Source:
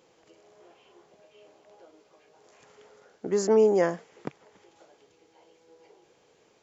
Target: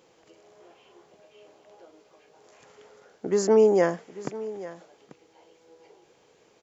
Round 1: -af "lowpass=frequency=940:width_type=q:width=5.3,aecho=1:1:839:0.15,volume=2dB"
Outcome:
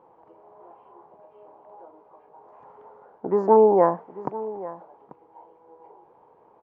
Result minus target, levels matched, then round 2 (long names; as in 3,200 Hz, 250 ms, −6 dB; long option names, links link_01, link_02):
1,000 Hz band +8.5 dB
-af "aecho=1:1:839:0.15,volume=2dB"